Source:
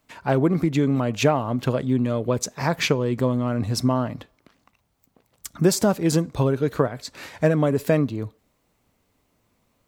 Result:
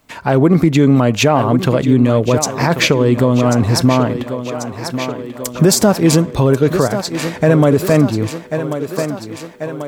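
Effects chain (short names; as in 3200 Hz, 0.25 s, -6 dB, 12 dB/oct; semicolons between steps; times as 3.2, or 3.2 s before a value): thinning echo 1.089 s, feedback 65%, high-pass 150 Hz, level -11 dB; maximiser +12 dB; gain -1 dB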